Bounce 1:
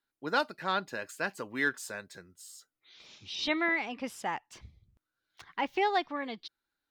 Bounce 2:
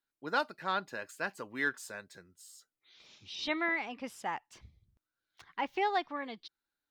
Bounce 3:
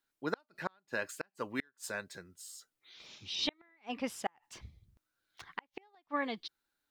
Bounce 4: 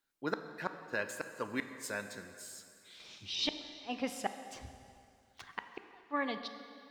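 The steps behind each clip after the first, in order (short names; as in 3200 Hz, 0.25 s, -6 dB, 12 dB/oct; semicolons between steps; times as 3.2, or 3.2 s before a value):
dynamic EQ 1100 Hz, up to +3 dB, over -39 dBFS, Q 0.79; gain -4.5 dB
flipped gate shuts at -25 dBFS, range -40 dB; gain +5 dB
plate-style reverb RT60 2.5 s, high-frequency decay 0.9×, DRR 8 dB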